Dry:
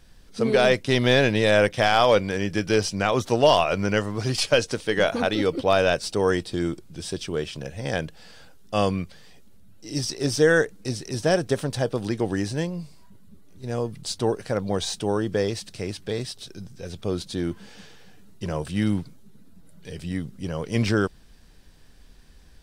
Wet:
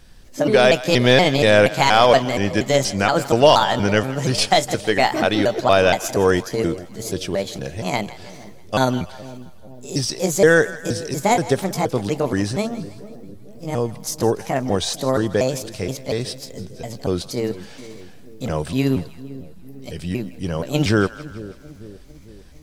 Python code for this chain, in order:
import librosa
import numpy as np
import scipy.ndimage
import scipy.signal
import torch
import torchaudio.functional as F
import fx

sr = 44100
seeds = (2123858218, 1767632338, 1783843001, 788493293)

y = fx.pitch_trill(x, sr, semitones=4.5, every_ms=237)
y = fx.echo_split(y, sr, split_hz=620.0, low_ms=450, high_ms=162, feedback_pct=52, wet_db=-16.0)
y = y * librosa.db_to_amplitude(5.0)